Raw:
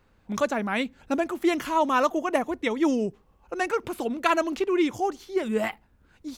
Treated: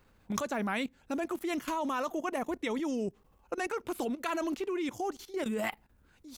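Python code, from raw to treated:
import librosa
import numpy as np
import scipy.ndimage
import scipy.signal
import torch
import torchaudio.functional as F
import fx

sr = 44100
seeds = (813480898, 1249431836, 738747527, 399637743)

y = fx.high_shelf(x, sr, hz=7300.0, db=8.0)
y = fx.level_steps(y, sr, step_db=16)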